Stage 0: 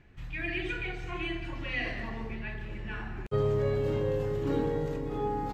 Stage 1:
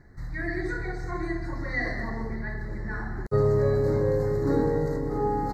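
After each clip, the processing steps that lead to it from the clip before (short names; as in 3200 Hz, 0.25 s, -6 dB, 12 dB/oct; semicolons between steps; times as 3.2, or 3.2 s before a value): elliptic band-stop 2000–4100 Hz, stop band 40 dB; gain +5.5 dB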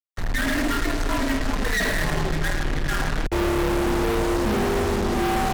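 fuzz box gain 44 dB, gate -42 dBFS; frequency shift -67 Hz; gain -7.5 dB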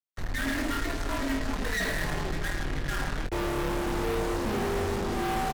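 doubler 22 ms -7.5 dB; gain -7 dB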